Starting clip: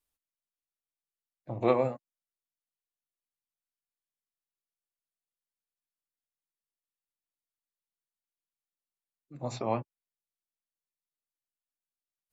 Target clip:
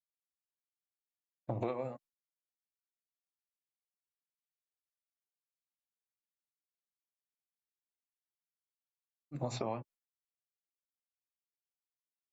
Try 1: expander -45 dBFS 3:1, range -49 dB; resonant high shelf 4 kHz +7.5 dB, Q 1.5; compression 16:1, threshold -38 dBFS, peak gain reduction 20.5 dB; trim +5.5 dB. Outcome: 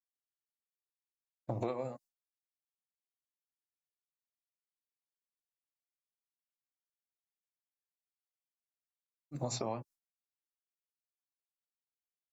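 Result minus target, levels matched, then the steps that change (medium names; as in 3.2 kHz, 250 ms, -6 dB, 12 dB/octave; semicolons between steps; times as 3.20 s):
8 kHz band +8.0 dB
remove: resonant high shelf 4 kHz +7.5 dB, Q 1.5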